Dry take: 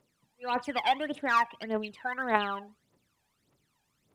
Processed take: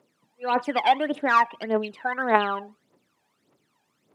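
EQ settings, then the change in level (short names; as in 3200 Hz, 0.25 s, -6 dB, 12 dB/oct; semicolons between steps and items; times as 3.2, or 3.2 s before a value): HPF 280 Hz 12 dB/oct; tilt -2 dB/oct; +6.5 dB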